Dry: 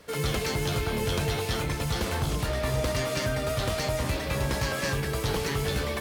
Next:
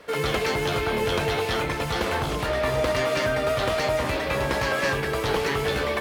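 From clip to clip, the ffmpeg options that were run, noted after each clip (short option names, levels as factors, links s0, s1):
-af "bass=f=250:g=-10,treble=f=4000:g=-10,volume=2.24"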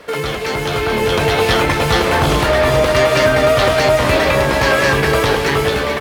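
-af "alimiter=limit=0.1:level=0:latency=1:release=418,dynaudnorm=f=390:g=5:m=2.24,aecho=1:1:434:0.355,volume=2.66"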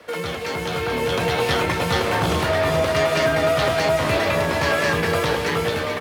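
-af "afreqshift=25,volume=0.473"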